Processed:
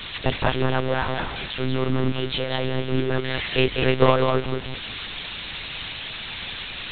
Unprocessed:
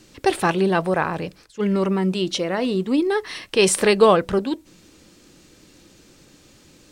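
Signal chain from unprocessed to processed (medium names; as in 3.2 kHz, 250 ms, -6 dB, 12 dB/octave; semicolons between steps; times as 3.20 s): zero-crossing glitches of -8.5 dBFS; on a send: thinning echo 194 ms, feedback 18%, high-pass 220 Hz, level -4 dB; on the sum: monotone LPC vocoder at 8 kHz 130 Hz; trim -3.5 dB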